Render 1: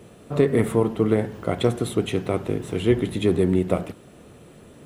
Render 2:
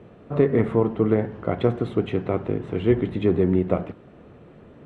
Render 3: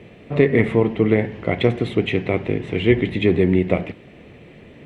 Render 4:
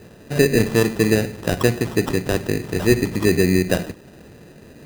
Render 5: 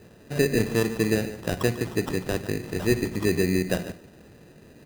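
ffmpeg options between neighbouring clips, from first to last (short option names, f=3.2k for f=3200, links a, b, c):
-af "lowpass=2.1k"
-af "highshelf=f=1.7k:t=q:w=3:g=6.5,volume=3.5dB"
-af "acrusher=samples=20:mix=1:aa=0.000001"
-af "aecho=1:1:145:0.2,volume=-6.5dB"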